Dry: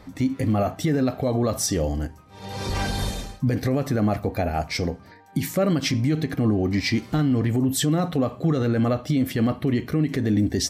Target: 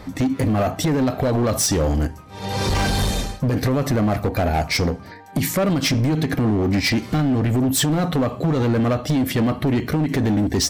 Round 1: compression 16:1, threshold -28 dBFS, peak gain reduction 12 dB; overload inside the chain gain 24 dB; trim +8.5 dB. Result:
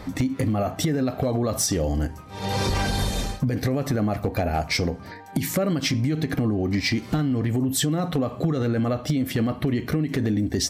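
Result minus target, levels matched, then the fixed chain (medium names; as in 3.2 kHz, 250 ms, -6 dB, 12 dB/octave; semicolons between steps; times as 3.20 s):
compression: peak gain reduction +6.5 dB
compression 16:1, threshold -21 dBFS, peak gain reduction 5.5 dB; overload inside the chain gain 24 dB; trim +8.5 dB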